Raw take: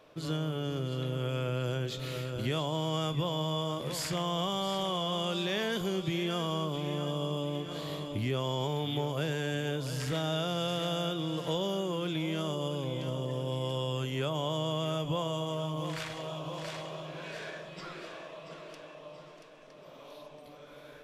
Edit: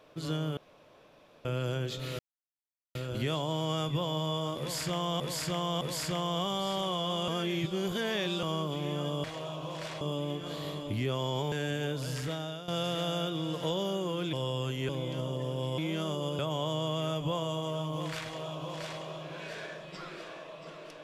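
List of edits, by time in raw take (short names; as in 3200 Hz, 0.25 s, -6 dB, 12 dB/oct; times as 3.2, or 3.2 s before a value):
0.57–1.45 room tone
2.19 insert silence 0.76 s
3.83–4.44 loop, 3 plays
5.3–6.45 reverse
8.77–9.36 cut
9.94–10.52 fade out, to -14 dB
12.17–12.78 swap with 13.67–14.23
16.07–16.84 copy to 7.26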